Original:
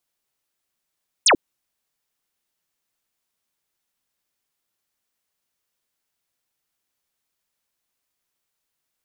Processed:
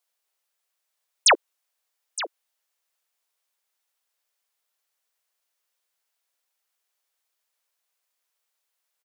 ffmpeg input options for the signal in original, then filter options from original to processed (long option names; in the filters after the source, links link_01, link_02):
-f lavfi -i "aevalsrc='0.282*clip(t/0.002,0,1)*clip((0.09-t)/0.002,0,1)*sin(2*PI*10000*0.09/log(250/10000)*(exp(log(250/10000)*t/0.09)-1))':duration=0.09:sample_rate=44100"
-af "highpass=frequency=460:width=0.5412,highpass=frequency=460:width=1.3066,aecho=1:1:916:0.2"